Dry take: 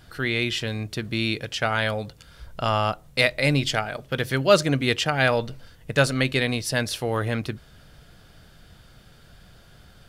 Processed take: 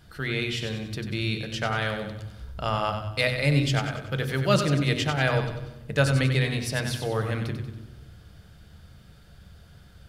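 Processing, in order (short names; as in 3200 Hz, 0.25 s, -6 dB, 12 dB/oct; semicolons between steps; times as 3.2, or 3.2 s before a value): thinning echo 94 ms, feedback 47%, high-pass 690 Hz, level -7 dB; on a send at -9 dB: reverb RT60 1.1 s, pre-delay 3 ms; on the sum: gain -5 dB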